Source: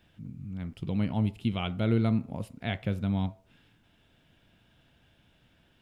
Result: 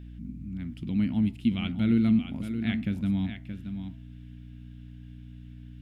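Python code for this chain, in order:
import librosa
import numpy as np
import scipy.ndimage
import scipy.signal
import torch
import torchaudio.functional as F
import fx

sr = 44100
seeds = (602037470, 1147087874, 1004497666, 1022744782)

y = fx.graphic_eq(x, sr, hz=(125, 250, 500, 1000, 2000), db=(-5, 12, -12, -7, 4))
y = fx.add_hum(y, sr, base_hz=60, snr_db=13)
y = y + 10.0 ** (-9.0 / 20.0) * np.pad(y, (int(624 * sr / 1000.0), 0))[:len(y)]
y = y * 10.0 ** (-1.5 / 20.0)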